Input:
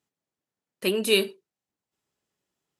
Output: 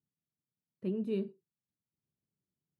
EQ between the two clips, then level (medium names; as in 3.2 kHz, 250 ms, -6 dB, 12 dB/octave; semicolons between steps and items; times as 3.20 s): band-pass filter 150 Hz, Q 1.3; bass shelf 150 Hz +9 dB; -3.5 dB